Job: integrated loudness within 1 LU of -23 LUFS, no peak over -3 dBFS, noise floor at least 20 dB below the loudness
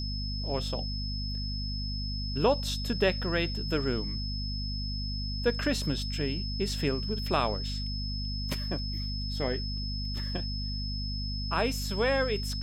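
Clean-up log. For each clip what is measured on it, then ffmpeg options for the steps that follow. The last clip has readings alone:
hum 50 Hz; highest harmonic 250 Hz; hum level -32 dBFS; steady tone 5.2 kHz; tone level -37 dBFS; loudness -31.5 LUFS; peak level -13.0 dBFS; loudness target -23.0 LUFS
-> -af "bandreject=f=50:t=h:w=4,bandreject=f=100:t=h:w=4,bandreject=f=150:t=h:w=4,bandreject=f=200:t=h:w=4,bandreject=f=250:t=h:w=4"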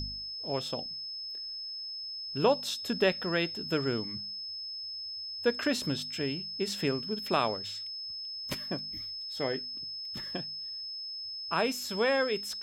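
hum not found; steady tone 5.2 kHz; tone level -37 dBFS
-> -af "bandreject=f=5200:w=30"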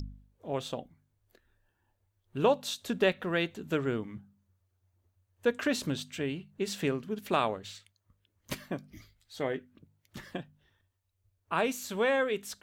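steady tone not found; loudness -32.5 LUFS; peak level -14.0 dBFS; loudness target -23.0 LUFS
-> -af "volume=2.99"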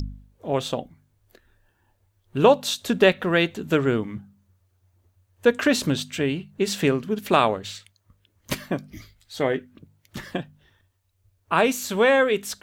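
loudness -23.0 LUFS; peak level -4.5 dBFS; noise floor -69 dBFS

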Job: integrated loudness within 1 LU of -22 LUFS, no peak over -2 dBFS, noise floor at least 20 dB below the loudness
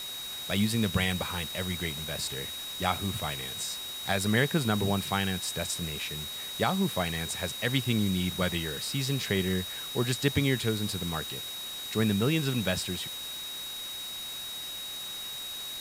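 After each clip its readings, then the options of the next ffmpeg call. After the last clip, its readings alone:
steady tone 3.8 kHz; tone level -37 dBFS; noise floor -39 dBFS; noise floor target -50 dBFS; loudness -30.0 LUFS; peak level -11.5 dBFS; loudness target -22.0 LUFS
-> -af "bandreject=f=3800:w=30"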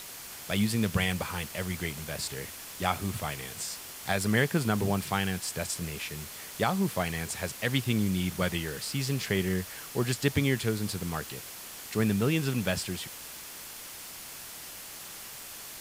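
steady tone not found; noise floor -44 dBFS; noise floor target -52 dBFS
-> -af "afftdn=nr=8:nf=-44"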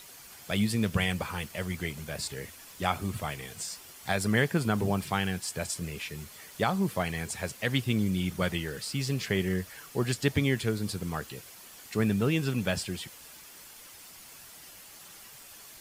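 noise floor -50 dBFS; noise floor target -51 dBFS
-> -af "afftdn=nr=6:nf=-50"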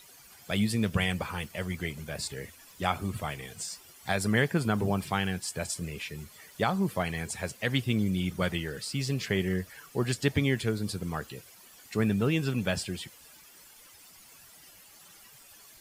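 noise floor -54 dBFS; loudness -31.0 LUFS; peak level -12.0 dBFS; loudness target -22.0 LUFS
-> -af "volume=2.82"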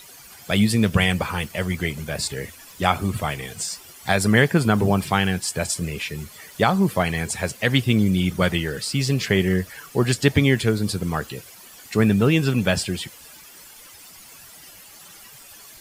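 loudness -22.0 LUFS; peak level -3.0 dBFS; noise floor -45 dBFS

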